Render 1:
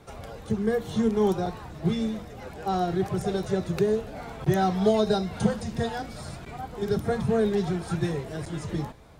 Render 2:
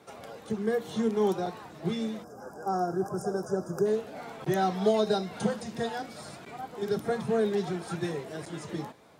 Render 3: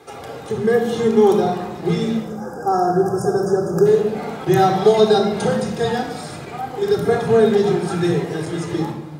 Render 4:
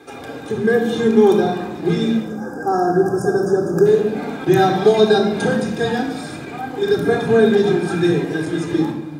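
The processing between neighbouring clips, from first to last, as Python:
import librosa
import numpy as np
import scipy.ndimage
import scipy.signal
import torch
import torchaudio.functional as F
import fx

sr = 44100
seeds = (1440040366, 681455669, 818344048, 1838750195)

y1 = scipy.signal.sosfilt(scipy.signal.butter(2, 210.0, 'highpass', fs=sr, output='sos'), x)
y1 = fx.spec_box(y1, sr, start_s=2.24, length_s=1.62, low_hz=1700.0, high_hz=4800.0, gain_db=-28)
y1 = y1 * librosa.db_to_amplitude(-2.0)
y2 = fx.room_shoebox(y1, sr, seeds[0], volume_m3=3600.0, walls='furnished', distance_m=3.9)
y2 = y2 * librosa.db_to_amplitude(8.0)
y3 = fx.small_body(y2, sr, hz=(280.0, 1600.0, 2400.0, 3600.0), ring_ms=45, db=12)
y3 = y3 * librosa.db_to_amplitude(-1.5)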